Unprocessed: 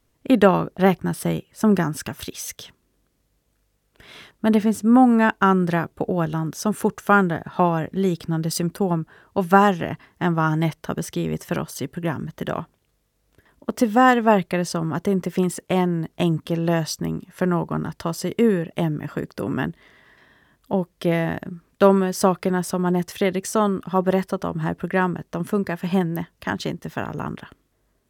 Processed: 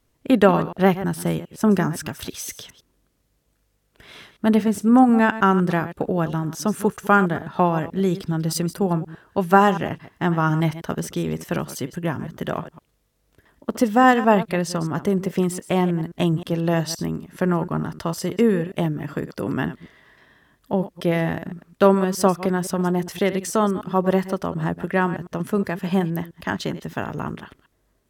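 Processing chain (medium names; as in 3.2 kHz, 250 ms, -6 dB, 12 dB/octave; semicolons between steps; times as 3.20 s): chunks repeated in reverse 104 ms, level -13.5 dB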